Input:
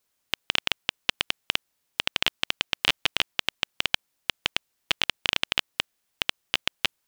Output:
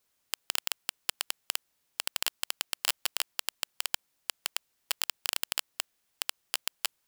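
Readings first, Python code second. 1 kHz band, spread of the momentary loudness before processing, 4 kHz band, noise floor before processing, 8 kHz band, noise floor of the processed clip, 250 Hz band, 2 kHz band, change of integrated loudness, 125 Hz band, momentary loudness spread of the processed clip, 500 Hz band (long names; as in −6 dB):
−7.0 dB, 8 LU, −8.5 dB, −76 dBFS, +5.5 dB, −76 dBFS, −15.0 dB, −10.5 dB, −6.0 dB, below −20 dB, 8 LU, −10.0 dB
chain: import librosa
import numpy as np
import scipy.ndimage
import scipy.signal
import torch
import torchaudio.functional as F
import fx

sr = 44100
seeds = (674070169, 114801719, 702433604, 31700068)

y = (np.mod(10.0 ** (11.5 / 20.0) * x + 1.0, 2.0) - 1.0) / 10.0 ** (11.5 / 20.0)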